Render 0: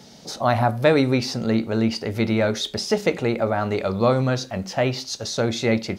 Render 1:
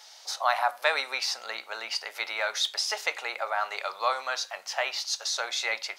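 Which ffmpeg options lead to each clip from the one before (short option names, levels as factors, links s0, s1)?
-af "highpass=f=830:w=0.5412,highpass=f=830:w=1.3066"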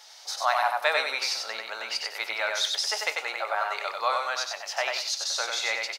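-af "aecho=1:1:94|188|282|376:0.668|0.18|0.0487|0.0132"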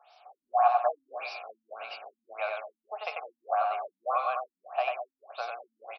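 -filter_complex "[0:a]asplit=3[s0][s1][s2];[s0]bandpass=f=730:t=q:w=8,volume=1[s3];[s1]bandpass=f=1090:t=q:w=8,volume=0.501[s4];[s2]bandpass=f=2440:t=q:w=8,volume=0.355[s5];[s3][s4][s5]amix=inputs=3:normalize=0,aecho=1:1:206|412|618:0.316|0.0822|0.0214,afftfilt=real='re*lt(b*sr/1024,270*pow(6000/270,0.5+0.5*sin(2*PI*1.7*pts/sr)))':imag='im*lt(b*sr/1024,270*pow(6000/270,0.5+0.5*sin(2*PI*1.7*pts/sr)))':win_size=1024:overlap=0.75,volume=2.24"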